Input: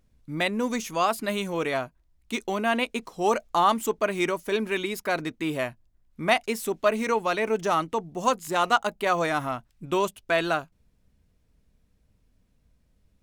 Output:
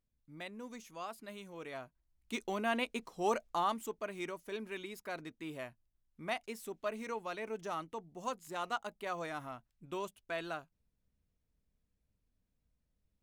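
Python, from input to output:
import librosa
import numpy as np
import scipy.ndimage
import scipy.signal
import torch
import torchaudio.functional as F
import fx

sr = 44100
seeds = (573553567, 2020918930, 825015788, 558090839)

y = fx.gain(x, sr, db=fx.line((1.55, -20.0), (2.35, -9.0), (3.35, -9.0), (3.97, -15.5)))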